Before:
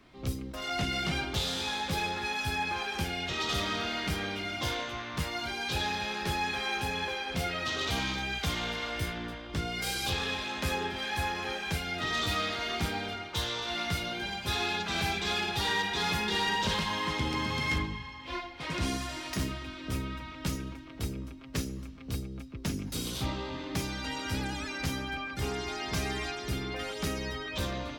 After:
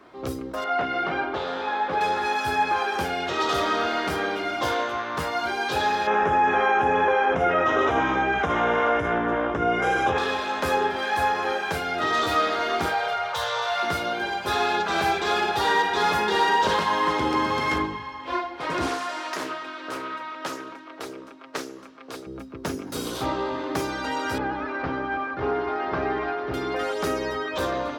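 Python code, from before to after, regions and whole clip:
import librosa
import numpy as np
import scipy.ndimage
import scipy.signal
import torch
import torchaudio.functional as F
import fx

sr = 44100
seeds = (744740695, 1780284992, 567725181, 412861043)

y = fx.chain(x, sr, fx.lowpass(hz=2300.0, slope=12),
    fx.low_shelf(hz=180.0, db=-10.0), at=(0.64, 2.01))
y = fx.chain(y, sr, fx.moving_average(points=10),
    fx.resample_bad(factor=2, down='none', up='filtered'),
    fx.env_flatten(amount_pct=70), at=(6.07, 10.18))
y = fx.chain(y, sr, fx.cheby1_bandstop(low_hz=150.0, high_hz=540.0, order=2),
    fx.low_shelf(hz=270.0, db=-6.5),
    fx.env_flatten(amount_pct=50), at=(12.87, 13.83))
y = fx.chain(y, sr, fx.weighting(curve='A'),
    fx.doppler_dist(depth_ms=0.25), at=(18.86, 22.27))
y = fx.chain(y, sr, fx.cvsd(bps=32000),
    fx.lowpass(hz=2000.0, slope=12), at=(24.38, 26.54))
y = fx.highpass(y, sr, hz=110.0, slope=6)
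y = fx.band_shelf(y, sr, hz=690.0, db=10.5, octaves=2.8)
y = fx.hum_notches(y, sr, base_hz=50, count=7)
y = y * 10.0 ** (1.5 / 20.0)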